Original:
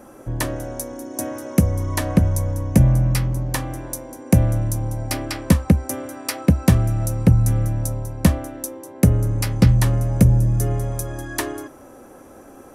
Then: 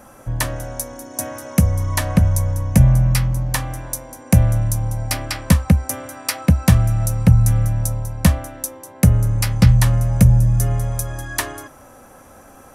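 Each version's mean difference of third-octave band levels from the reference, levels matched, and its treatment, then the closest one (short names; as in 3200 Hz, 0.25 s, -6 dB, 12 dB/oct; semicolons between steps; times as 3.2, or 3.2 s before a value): 2.5 dB: bell 350 Hz -12.5 dB 1.1 oct; gain +4 dB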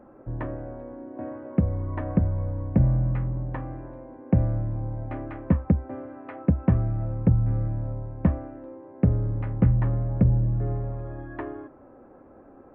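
6.0 dB: Gaussian blur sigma 5 samples; gain -6 dB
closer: first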